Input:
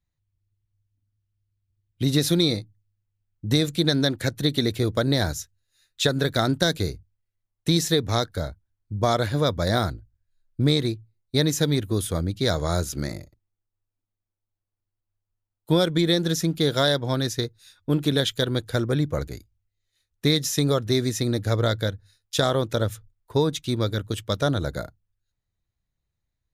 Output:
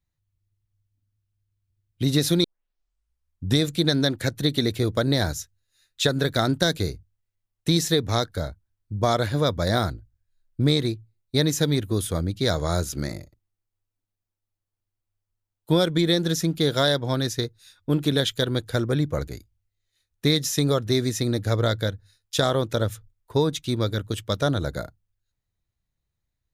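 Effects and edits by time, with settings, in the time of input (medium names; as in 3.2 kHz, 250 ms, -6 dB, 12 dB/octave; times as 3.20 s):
2.44 s: tape start 1.16 s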